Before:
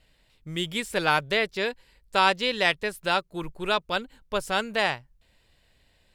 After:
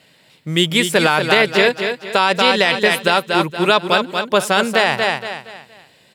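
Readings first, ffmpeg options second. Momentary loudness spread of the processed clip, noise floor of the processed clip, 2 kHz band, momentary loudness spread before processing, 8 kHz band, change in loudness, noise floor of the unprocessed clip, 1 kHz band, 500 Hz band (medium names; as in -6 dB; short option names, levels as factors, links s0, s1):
8 LU, -53 dBFS, +10.5 dB, 10 LU, +13.5 dB, +10.5 dB, -65 dBFS, +9.5 dB, +12.0 dB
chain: -af "highpass=f=130:w=0.5412,highpass=f=130:w=1.3066,aecho=1:1:234|468|702|936:0.398|0.139|0.0488|0.0171,alimiter=level_in=5.62:limit=0.891:release=50:level=0:latency=1,volume=0.891"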